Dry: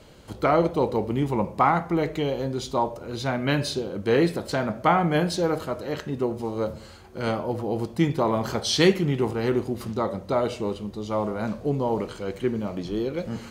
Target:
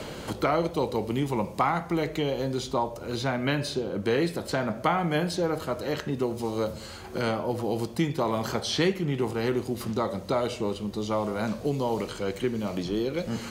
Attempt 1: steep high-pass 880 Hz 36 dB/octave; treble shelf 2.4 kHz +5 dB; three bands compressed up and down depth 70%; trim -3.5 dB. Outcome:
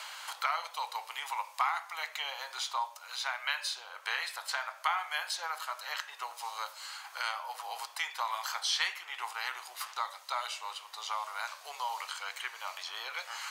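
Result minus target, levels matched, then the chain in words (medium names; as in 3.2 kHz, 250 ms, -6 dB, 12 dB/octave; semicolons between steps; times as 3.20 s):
1 kHz band +4.0 dB
treble shelf 2.4 kHz +5 dB; three bands compressed up and down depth 70%; trim -3.5 dB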